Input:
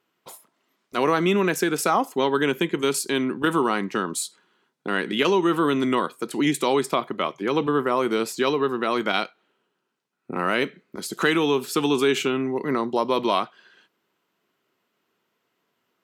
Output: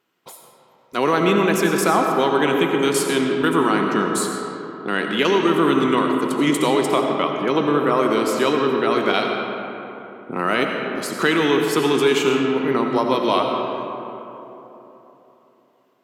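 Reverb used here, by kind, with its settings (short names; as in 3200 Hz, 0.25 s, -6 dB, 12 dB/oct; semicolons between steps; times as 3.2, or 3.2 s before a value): digital reverb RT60 3.5 s, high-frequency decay 0.45×, pre-delay 45 ms, DRR 2 dB; gain +2 dB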